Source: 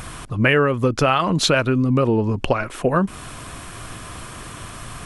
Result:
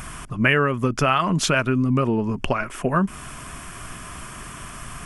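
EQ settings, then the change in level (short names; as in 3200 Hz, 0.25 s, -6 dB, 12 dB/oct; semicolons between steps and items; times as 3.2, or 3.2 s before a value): thirty-one-band EQ 100 Hz -11 dB, 315 Hz -5 dB, 500 Hz -9 dB, 800 Hz -4 dB, 4000 Hz -11 dB; 0.0 dB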